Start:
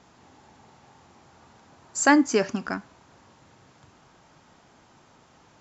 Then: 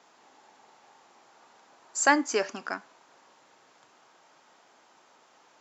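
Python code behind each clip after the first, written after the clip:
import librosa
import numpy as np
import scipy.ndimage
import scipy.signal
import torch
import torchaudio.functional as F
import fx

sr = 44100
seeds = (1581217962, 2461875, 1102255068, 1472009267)

y = scipy.signal.sosfilt(scipy.signal.butter(2, 440.0, 'highpass', fs=sr, output='sos'), x)
y = y * 10.0 ** (-1.5 / 20.0)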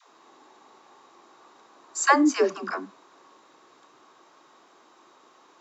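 y = fx.small_body(x, sr, hz=(340.0, 1100.0, 3800.0), ring_ms=20, db=10)
y = fx.dispersion(y, sr, late='lows', ms=125.0, hz=370.0)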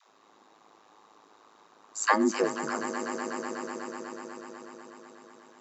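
y = fx.echo_swell(x, sr, ms=123, loudest=5, wet_db=-14.0)
y = y * np.sin(2.0 * np.pi * 53.0 * np.arange(len(y)) / sr)
y = y * 10.0 ** (-2.0 / 20.0)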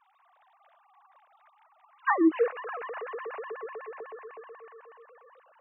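y = fx.sine_speech(x, sr)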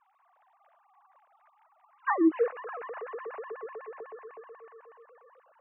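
y = fx.air_absorb(x, sr, metres=500.0)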